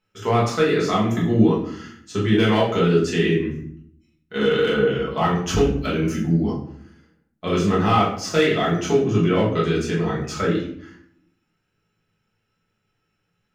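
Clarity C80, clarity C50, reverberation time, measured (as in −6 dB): 9.0 dB, 5.5 dB, 0.65 s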